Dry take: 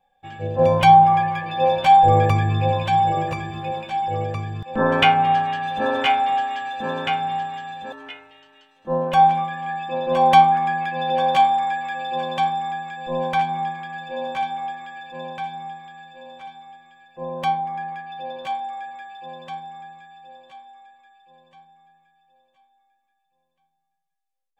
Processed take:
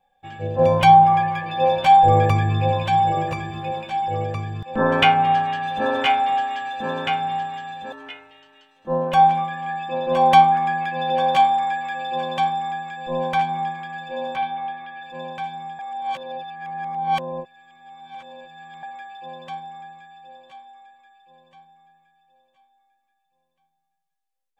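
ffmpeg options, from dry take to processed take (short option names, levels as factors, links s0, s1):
-filter_complex "[0:a]asettb=1/sr,asplit=3[s0][s1][s2];[s0]atrim=end=14.364[s3];[s1]atrim=start=14.36:end=15.03,asetpts=PTS-STARTPTS,afade=t=in:d=0.004:c=qsin,afade=t=out:st=0.666:d=0.004:c=qsin,lowpass=f=4000:w=0.5412,lowpass=f=4000:w=1.3066[s4];[s2]atrim=start=15.026[s5];[s3][s4]acrossfade=d=0.004:c1=hsin:c2=qsin[s6];[s6][s5]acrossfade=d=0.004:c1=qsin:c2=hsin,asplit=3[s7][s8][s9];[s7]atrim=end=15.792[s10];[s8]atrim=start=15.788:end=18.832,asetpts=PTS-STARTPTS,areverse[s11];[s9]atrim=start=18.828[s12];[s10][s11]acrossfade=d=0.004:c1=hsin:c2=hsin[s13];[s13][s12]acrossfade=d=0.004:c1=hsin:c2=hsin"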